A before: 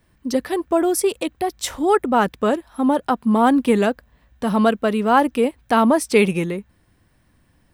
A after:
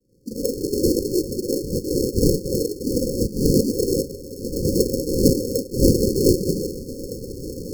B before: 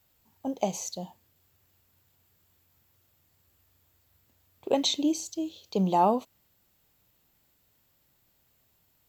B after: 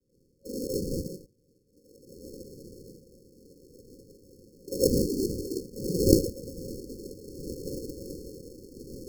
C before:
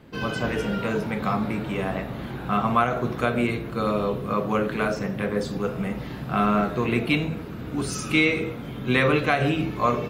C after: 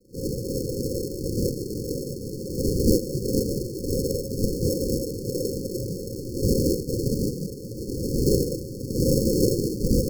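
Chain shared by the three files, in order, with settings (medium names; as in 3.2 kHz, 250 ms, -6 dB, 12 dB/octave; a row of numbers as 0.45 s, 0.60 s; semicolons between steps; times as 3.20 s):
peaking EQ 220 Hz -14 dB 0.4 oct; on a send: echo that smears into a reverb 1661 ms, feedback 52%, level -14 dB; on the sum: gated-style reverb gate 140 ms rising, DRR -7.5 dB; noise-vocoded speech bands 12; tilt shelf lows -3.5 dB; in parallel at -3 dB: compression, threshold -29 dBFS; on the sum: sample-and-hold 37×; FFT band-reject 550–4300 Hz; random flutter of the level, depth 55%; trim -3.5 dB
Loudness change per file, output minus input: -2.5 LU, -2.0 LU, -1.5 LU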